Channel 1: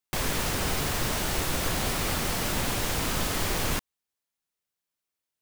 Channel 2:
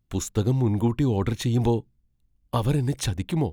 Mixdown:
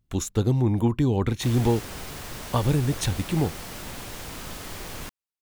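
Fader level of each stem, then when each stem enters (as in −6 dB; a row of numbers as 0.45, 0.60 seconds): −9.0, +0.5 decibels; 1.30, 0.00 seconds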